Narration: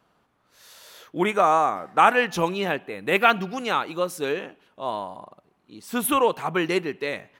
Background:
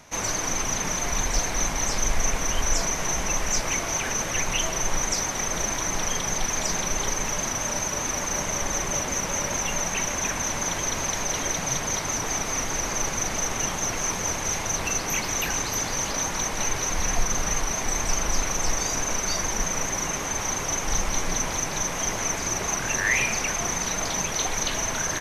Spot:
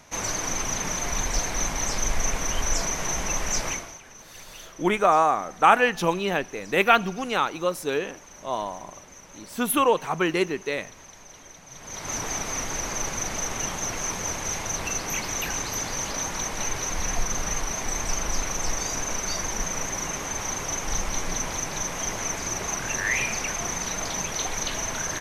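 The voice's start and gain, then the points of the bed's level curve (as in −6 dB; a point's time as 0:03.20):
3.65 s, 0.0 dB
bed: 0:03.69 −1.5 dB
0:04.01 −20 dB
0:11.68 −20 dB
0:12.13 −2.5 dB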